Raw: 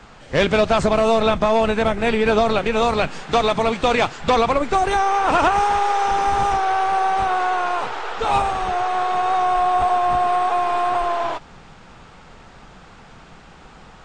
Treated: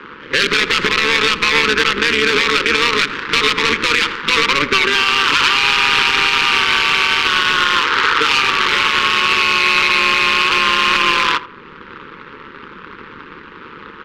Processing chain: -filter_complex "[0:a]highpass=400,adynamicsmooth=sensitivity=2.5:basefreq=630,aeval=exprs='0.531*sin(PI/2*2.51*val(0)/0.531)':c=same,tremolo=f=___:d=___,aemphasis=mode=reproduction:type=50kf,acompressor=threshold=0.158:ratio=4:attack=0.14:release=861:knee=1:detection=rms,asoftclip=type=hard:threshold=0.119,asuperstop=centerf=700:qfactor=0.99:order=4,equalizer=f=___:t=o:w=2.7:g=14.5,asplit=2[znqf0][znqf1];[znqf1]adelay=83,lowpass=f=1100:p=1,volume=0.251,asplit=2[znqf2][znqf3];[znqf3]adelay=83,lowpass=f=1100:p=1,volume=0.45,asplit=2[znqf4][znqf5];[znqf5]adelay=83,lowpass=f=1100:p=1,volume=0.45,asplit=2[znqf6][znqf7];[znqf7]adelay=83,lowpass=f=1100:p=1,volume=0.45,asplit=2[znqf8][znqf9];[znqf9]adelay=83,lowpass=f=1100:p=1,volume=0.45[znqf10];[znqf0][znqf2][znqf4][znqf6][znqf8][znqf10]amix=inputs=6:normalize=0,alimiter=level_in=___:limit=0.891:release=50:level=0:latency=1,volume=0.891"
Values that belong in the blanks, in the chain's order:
150, 0.857, 3500, 3.55